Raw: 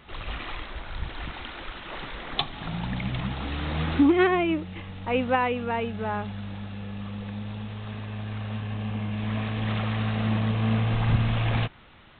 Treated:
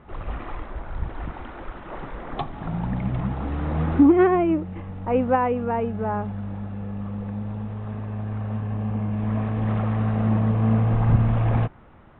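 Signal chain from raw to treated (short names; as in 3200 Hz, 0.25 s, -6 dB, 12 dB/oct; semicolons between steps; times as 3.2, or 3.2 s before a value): LPF 1100 Hz 12 dB/oct; gain +4.5 dB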